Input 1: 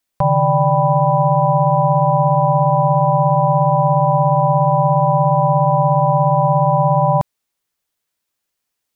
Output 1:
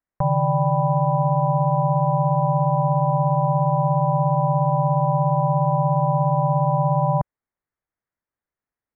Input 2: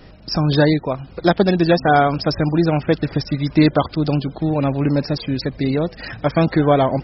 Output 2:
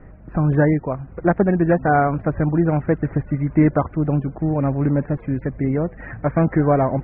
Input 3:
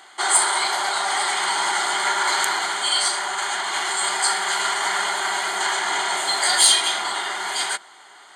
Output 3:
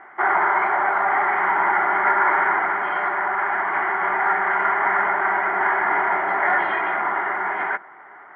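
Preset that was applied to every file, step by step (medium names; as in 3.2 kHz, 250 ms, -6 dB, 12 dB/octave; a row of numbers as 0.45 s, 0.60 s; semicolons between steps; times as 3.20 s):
steep low-pass 2.1 kHz 48 dB/octave; bass shelf 150 Hz +6.5 dB; normalise loudness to -20 LUFS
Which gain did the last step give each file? -7.0 dB, -3.0 dB, +4.5 dB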